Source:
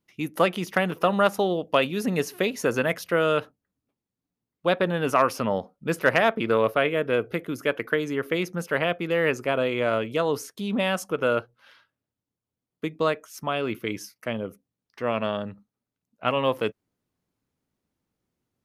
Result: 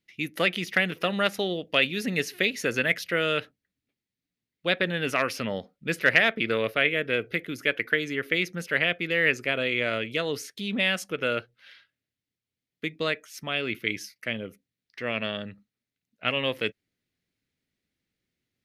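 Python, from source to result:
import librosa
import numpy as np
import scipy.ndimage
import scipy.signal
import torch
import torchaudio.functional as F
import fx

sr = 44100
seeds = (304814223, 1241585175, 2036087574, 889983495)

y = fx.graphic_eq(x, sr, hz=(1000, 2000, 4000), db=(-11, 11, 7))
y = F.gain(torch.from_numpy(y), -3.5).numpy()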